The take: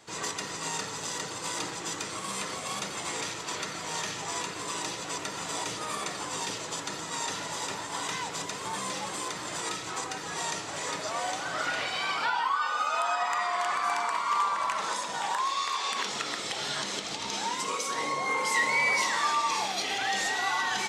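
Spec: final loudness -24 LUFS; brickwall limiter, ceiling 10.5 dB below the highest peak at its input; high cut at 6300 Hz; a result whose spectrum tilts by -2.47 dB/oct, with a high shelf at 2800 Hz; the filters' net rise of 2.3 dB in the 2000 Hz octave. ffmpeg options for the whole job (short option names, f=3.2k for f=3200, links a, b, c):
-af "lowpass=6.3k,equalizer=f=2k:t=o:g=6,highshelf=f=2.8k:g=-8.5,volume=9.5dB,alimiter=limit=-15dB:level=0:latency=1"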